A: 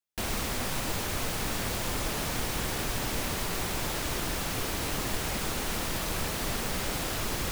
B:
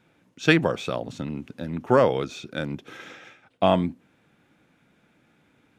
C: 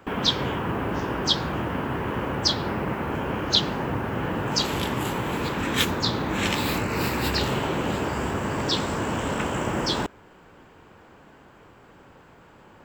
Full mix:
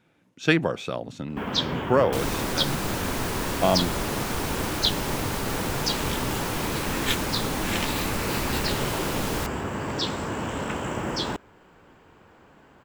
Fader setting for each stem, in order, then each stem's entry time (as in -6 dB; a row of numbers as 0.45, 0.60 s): +0.5, -2.0, -3.0 dB; 1.95, 0.00, 1.30 s